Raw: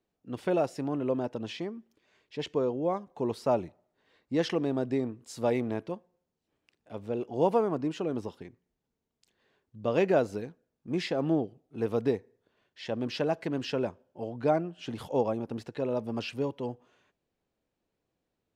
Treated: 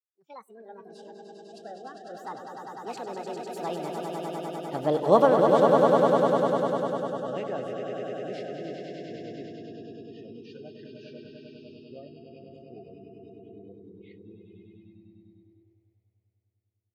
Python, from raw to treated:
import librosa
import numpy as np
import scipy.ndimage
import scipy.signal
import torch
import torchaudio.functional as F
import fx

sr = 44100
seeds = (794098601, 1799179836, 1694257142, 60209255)

p1 = fx.speed_glide(x, sr, from_pct=151, to_pct=68)
p2 = fx.doppler_pass(p1, sr, speed_mps=18, closest_m=4.6, pass_at_s=4.97)
p3 = p2 + fx.echo_swell(p2, sr, ms=100, loudest=5, wet_db=-5.0, dry=0)
p4 = fx.noise_reduce_blind(p3, sr, reduce_db=24)
y = p4 * librosa.db_to_amplitude(8.5)